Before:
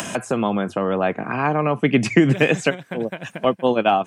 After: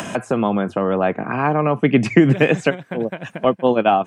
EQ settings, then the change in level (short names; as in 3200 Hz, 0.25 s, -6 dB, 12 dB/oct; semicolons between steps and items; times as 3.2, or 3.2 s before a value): high shelf 3300 Hz -9.5 dB; +2.5 dB